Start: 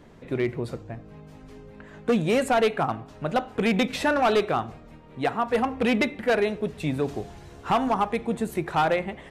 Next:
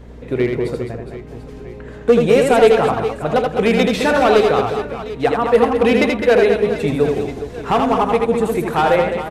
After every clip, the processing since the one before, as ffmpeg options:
-af "equalizer=f=460:t=o:w=0.35:g=7.5,aeval=exprs='val(0)+0.00708*(sin(2*PI*60*n/s)+sin(2*PI*2*60*n/s)/2+sin(2*PI*3*60*n/s)/3+sin(2*PI*4*60*n/s)/4+sin(2*PI*5*60*n/s)/5)':c=same,aecho=1:1:80|208|412.8|740.5|1265:0.631|0.398|0.251|0.158|0.1,volume=5dB"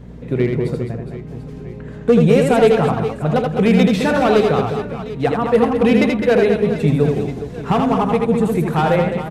-af "equalizer=f=160:t=o:w=1.1:g=12,volume=-3dB"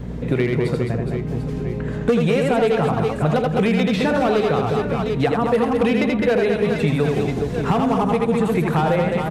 -filter_complex "[0:a]asplit=2[a][b];[b]alimiter=limit=-8.5dB:level=0:latency=1,volume=-0.5dB[c];[a][c]amix=inputs=2:normalize=0,acrossover=split=810|4600[d][e][f];[d]acompressor=threshold=-19dB:ratio=4[g];[e]acompressor=threshold=-28dB:ratio=4[h];[f]acompressor=threshold=-48dB:ratio=4[i];[g][h][i]amix=inputs=3:normalize=0,volume=1dB"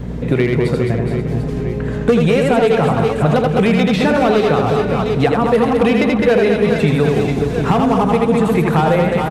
-af "aecho=1:1:448:0.266,volume=4.5dB"

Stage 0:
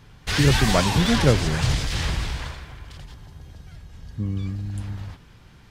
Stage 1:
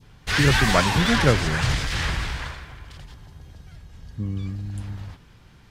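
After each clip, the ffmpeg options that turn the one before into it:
-af "adynamicequalizer=threshold=0.01:dfrequency=1600:dqfactor=0.9:tfrequency=1600:tqfactor=0.9:attack=5:release=100:ratio=0.375:range=3.5:mode=boostabove:tftype=bell,volume=-1.5dB"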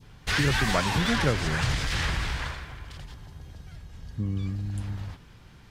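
-af "acompressor=threshold=-25dB:ratio=2"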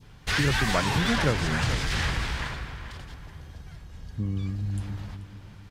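-filter_complex "[0:a]asplit=2[a][b];[b]adelay=434,lowpass=f=2.9k:p=1,volume=-11dB,asplit=2[c][d];[d]adelay=434,lowpass=f=2.9k:p=1,volume=0.4,asplit=2[e][f];[f]adelay=434,lowpass=f=2.9k:p=1,volume=0.4,asplit=2[g][h];[h]adelay=434,lowpass=f=2.9k:p=1,volume=0.4[i];[a][c][e][g][i]amix=inputs=5:normalize=0"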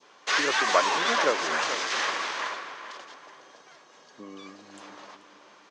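-af "highpass=f=340:w=0.5412,highpass=f=340:w=1.3066,equalizer=f=590:t=q:w=4:g=5,equalizer=f=1.1k:t=q:w=4:g=8,equalizer=f=6.3k:t=q:w=4:g=6,lowpass=f=7k:w=0.5412,lowpass=f=7k:w=1.3066,volume=1dB"

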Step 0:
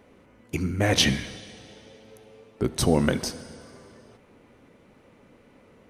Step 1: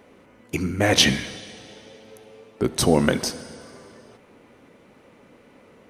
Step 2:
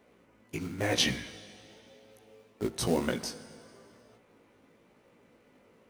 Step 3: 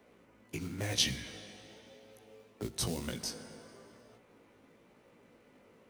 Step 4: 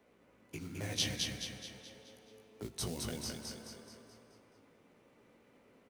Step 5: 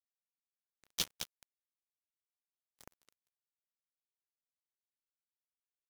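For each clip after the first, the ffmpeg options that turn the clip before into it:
-af "lowshelf=f=120:g=-9,volume=4.5dB"
-filter_complex "[0:a]acrossover=split=980[a][b];[a]acrusher=bits=4:mode=log:mix=0:aa=0.000001[c];[c][b]amix=inputs=2:normalize=0,flanger=delay=16.5:depth=2.7:speed=0.99,volume=-7.5dB"
-filter_complex "[0:a]acrossover=split=150|3000[a][b][c];[b]acompressor=threshold=-40dB:ratio=4[d];[a][d][c]amix=inputs=3:normalize=0"
-af "aecho=1:1:214|428|642|856|1070|1284:0.708|0.333|0.156|0.0735|0.0345|0.0162,volume=-5dB"
-filter_complex "[0:a]asplit=2[a][b];[b]asoftclip=type=tanh:threshold=-36.5dB,volume=-8dB[c];[a][c]amix=inputs=2:normalize=0,acrusher=bits=3:mix=0:aa=0.5,volume=2dB"

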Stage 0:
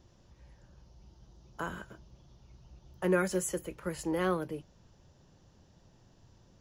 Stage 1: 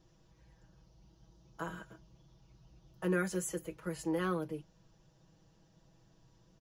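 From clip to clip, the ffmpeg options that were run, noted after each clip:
-af "aecho=1:1:6.2:0.78,volume=-6dB"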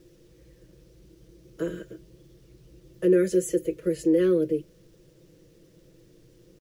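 -filter_complex "[0:a]firequalizer=gain_entry='entry(220,0);entry(360,12);entry(540,8);entry(780,-22);entry(1800,-2)':delay=0.05:min_phase=1,asplit=2[a][b];[b]alimiter=limit=-23.5dB:level=0:latency=1:release=78,volume=2dB[c];[a][c]amix=inputs=2:normalize=0,acrusher=bits=10:mix=0:aa=0.000001"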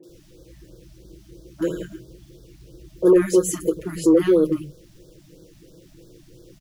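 -filter_complex "[0:a]asoftclip=type=tanh:threshold=-15dB,acrossover=split=170|1200[a][b][c];[c]adelay=30[d];[a]adelay=90[e];[e][b][d]amix=inputs=3:normalize=0,afftfilt=real='re*(1-between(b*sr/1024,410*pow(2400/410,0.5+0.5*sin(2*PI*3*pts/sr))/1.41,410*pow(2400/410,0.5+0.5*sin(2*PI*3*pts/sr))*1.41))':imag='im*(1-between(b*sr/1024,410*pow(2400/410,0.5+0.5*sin(2*PI*3*pts/sr))/1.41,410*pow(2400/410,0.5+0.5*sin(2*PI*3*pts/sr))*1.41))':win_size=1024:overlap=0.75,volume=8.5dB"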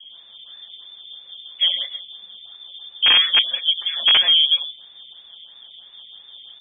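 -af "aeval=exprs='(mod(2.37*val(0)+1,2)-1)/2.37':c=same,apsyclip=15.5dB,lowpass=f=3.1k:t=q:w=0.5098,lowpass=f=3.1k:t=q:w=0.6013,lowpass=f=3.1k:t=q:w=0.9,lowpass=f=3.1k:t=q:w=2.563,afreqshift=-3600,volume=-10dB"

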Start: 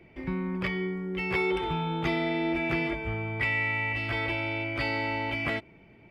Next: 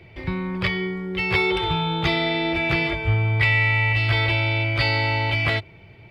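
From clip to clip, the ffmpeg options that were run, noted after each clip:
-af "equalizer=f=100:t=o:w=0.67:g=11,equalizer=f=250:t=o:w=0.67:g=-10,equalizer=f=4k:t=o:w=0.67:g=10,volume=6.5dB"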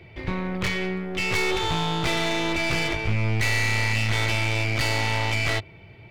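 -af "asoftclip=type=tanh:threshold=-21dB,aeval=exprs='0.0891*(cos(1*acos(clip(val(0)/0.0891,-1,1)))-cos(1*PI/2))+0.0398*(cos(2*acos(clip(val(0)/0.0891,-1,1)))-cos(2*PI/2))+0.00251*(cos(8*acos(clip(val(0)/0.0891,-1,1)))-cos(8*PI/2))':c=same"

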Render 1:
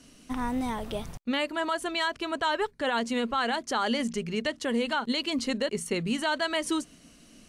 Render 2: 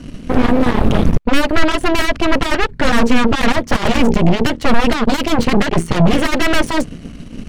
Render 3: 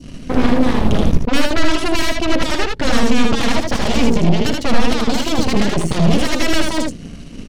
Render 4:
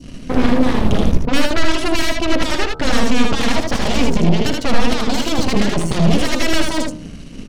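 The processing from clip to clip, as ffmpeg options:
-af "aeval=exprs='0.133*sin(PI/2*3.98*val(0)/0.133)':c=same,bass=f=250:g=14,treble=f=4k:g=-12,aeval=exprs='0.668*(cos(1*acos(clip(val(0)/0.668,-1,1)))-cos(1*PI/2))+0.211*(cos(6*acos(clip(val(0)/0.668,-1,1)))-cos(6*PI/2))':c=same,volume=-1dB"
-filter_complex "[0:a]equalizer=f=5.5k:w=0.82:g=5.5,asplit=2[a][b];[b]aecho=0:1:59|78:0.224|0.668[c];[a][c]amix=inputs=2:normalize=0,adynamicequalizer=threshold=0.0355:dfrequency=1500:dqfactor=0.8:tfrequency=1500:tqfactor=0.8:attack=5:release=100:ratio=0.375:range=2:mode=cutabove:tftype=bell,volume=-3.5dB"
-af "bandreject=f=76.9:t=h:w=4,bandreject=f=153.8:t=h:w=4,bandreject=f=230.7:t=h:w=4,bandreject=f=307.6:t=h:w=4,bandreject=f=384.5:t=h:w=4,bandreject=f=461.4:t=h:w=4,bandreject=f=538.3:t=h:w=4,bandreject=f=615.2:t=h:w=4,bandreject=f=692.1:t=h:w=4,bandreject=f=769:t=h:w=4,bandreject=f=845.9:t=h:w=4,bandreject=f=922.8:t=h:w=4,bandreject=f=999.7:t=h:w=4,bandreject=f=1.0766k:t=h:w=4,bandreject=f=1.1535k:t=h:w=4,bandreject=f=1.2304k:t=h:w=4,bandreject=f=1.3073k:t=h:w=4,bandreject=f=1.3842k:t=h:w=4,bandreject=f=1.4611k:t=h:w=4,bandreject=f=1.538k:t=h:w=4"

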